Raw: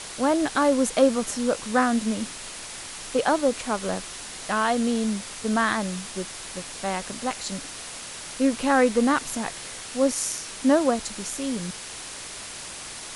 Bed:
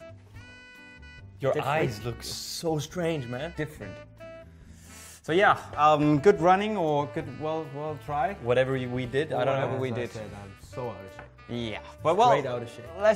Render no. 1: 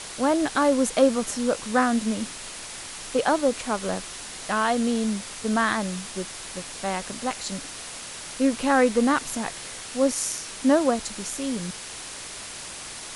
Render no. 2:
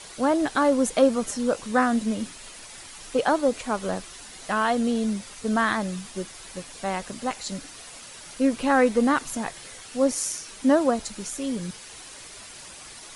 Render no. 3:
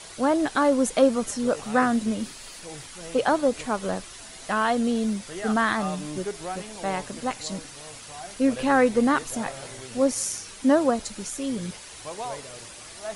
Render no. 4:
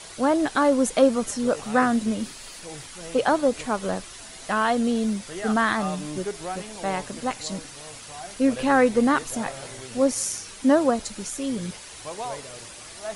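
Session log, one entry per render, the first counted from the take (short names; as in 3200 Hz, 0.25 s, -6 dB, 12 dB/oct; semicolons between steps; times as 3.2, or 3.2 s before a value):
nothing audible
denoiser 8 dB, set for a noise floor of -38 dBFS
add bed -13.5 dB
gain +1 dB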